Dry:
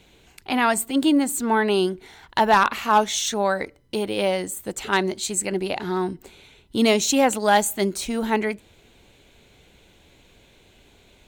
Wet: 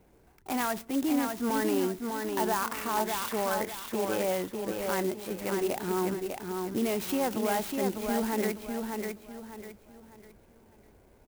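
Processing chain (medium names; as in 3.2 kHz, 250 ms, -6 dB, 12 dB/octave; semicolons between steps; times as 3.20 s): level-controlled noise filter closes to 1.4 kHz, open at -15.5 dBFS; tone controls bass -2 dB, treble -14 dB; peak limiter -18 dBFS, peak gain reduction 10.5 dB; on a send: feedback delay 600 ms, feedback 34%, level -4.5 dB; on the sum: sampling jitter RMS 0.061 ms; trim -3.5 dB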